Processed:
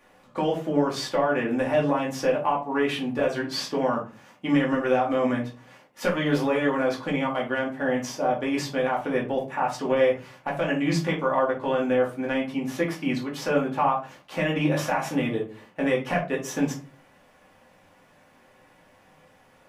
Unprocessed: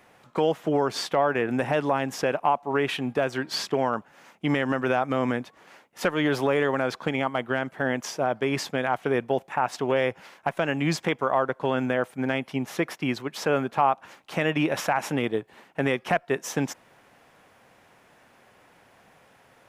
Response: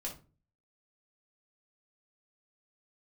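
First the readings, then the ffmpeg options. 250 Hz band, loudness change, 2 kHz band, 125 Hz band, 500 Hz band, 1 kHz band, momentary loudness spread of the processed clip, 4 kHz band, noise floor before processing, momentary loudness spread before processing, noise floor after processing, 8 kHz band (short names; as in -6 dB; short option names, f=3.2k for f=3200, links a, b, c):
+2.0 dB, +0.5 dB, -1.0 dB, +0.5 dB, +1.0 dB, -0.5 dB, 6 LU, -1.0 dB, -58 dBFS, 6 LU, -58 dBFS, -1.0 dB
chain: -filter_complex "[1:a]atrim=start_sample=2205[a];[0:a][a]afir=irnorm=-1:irlink=0"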